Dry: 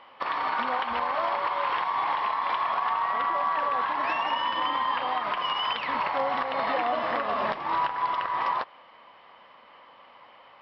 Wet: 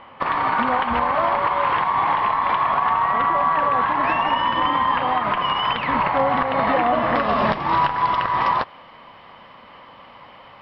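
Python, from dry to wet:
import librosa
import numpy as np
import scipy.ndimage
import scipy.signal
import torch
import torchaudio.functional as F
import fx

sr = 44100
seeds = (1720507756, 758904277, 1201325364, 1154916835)

y = fx.bass_treble(x, sr, bass_db=13, treble_db=fx.steps((0.0, -14.0), (7.14, 1.0)))
y = y * librosa.db_to_amplitude(7.5)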